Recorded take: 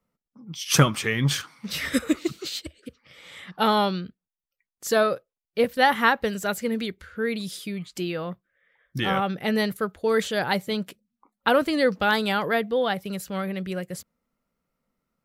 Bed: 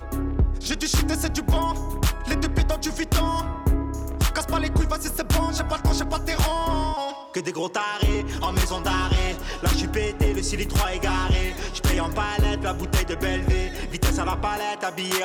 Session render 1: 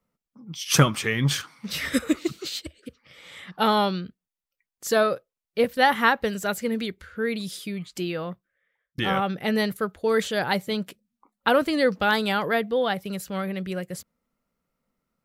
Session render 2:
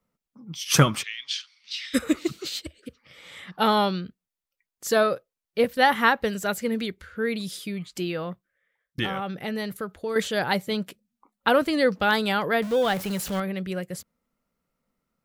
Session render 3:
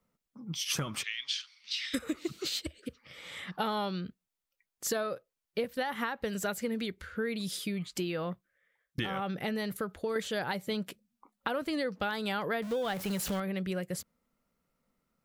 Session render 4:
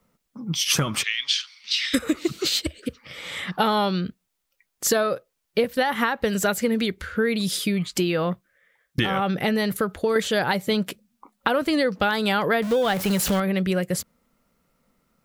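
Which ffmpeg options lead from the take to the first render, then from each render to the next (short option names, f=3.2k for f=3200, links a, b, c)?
-filter_complex "[0:a]asplit=2[a][b];[a]atrim=end=8.98,asetpts=PTS-STARTPTS,afade=t=out:st=8.23:d=0.75[c];[b]atrim=start=8.98,asetpts=PTS-STARTPTS,afade=t=in:d=0.004:c=hsin[d];[c][d]concat=n=2:v=0:a=1"
-filter_complex "[0:a]asplit=3[a][b][c];[a]afade=t=out:st=1.02:d=0.02[d];[b]asuperpass=centerf=3800:order=4:qfactor=1.3,afade=t=in:st=1.02:d=0.02,afade=t=out:st=1.93:d=0.02[e];[c]afade=t=in:st=1.93:d=0.02[f];[d][e][f]amix=inputs=3:normalize=0,asettb=1/sr,asplit=3[g][h][i];[g]atrim=end=9.064[j];[h]atrim=start=9.06:end=10.16,asetpts=PTS-STARTPTS,afade=t=in:d=0.004:c=qsin,afade=t=out:st=1.096:d=0.004:c=qsin,acompressor=threshold=-31dB:ratio=2:attack=3.2:release=140:knee=1:detection=peak[k];[i]atrim=start=10.156[l];[j][k]acrossfade=d=0.004:c1=hsin:c2=qsin[m];[m][l]acrossfade=d=0.004:c1=qsin:c2=hsin,asettb=1/sr,asplit=3[n][o][p];[n]atrim=end=12.624[q];[o]atrim=start=12.62:end=13.4,asetpts=PTS-STARTPTS,afade=t=in:d=0.004:c=qsin,afade=t=out:st=0.776:d=0.004:c=qsin,aeval=exprs='val(0)+0.5*0.0282*sgn(val(0))':c=same[r];[p]atrim=start=13.396[s];[q][r]acrossfade=d=0.004:c1=hsin:c2=qsin[t];[t][s]acrossfade=d=0.004:c1=qsin:c2=hsin"
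-af "alimiter=limit=-12.5dB:level=0:latency=1:release=266,acompressor=threshold=-30dB:ratio=6"
-af "volume=11dB"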